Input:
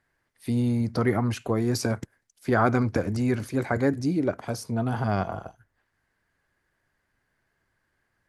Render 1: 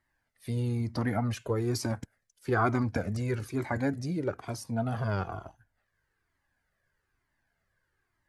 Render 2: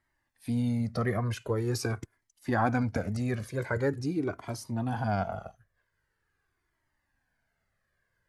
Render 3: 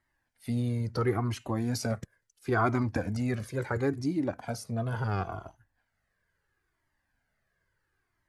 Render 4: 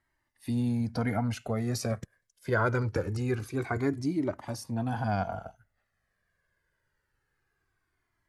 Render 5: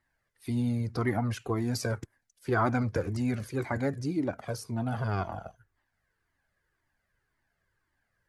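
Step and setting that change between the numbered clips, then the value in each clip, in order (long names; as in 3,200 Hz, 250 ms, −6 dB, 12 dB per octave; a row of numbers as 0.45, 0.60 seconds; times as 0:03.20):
flanger whose copies keep moving one way, speed: 1.1, 0.44, 0.73, 0.24, 1.9 Hertz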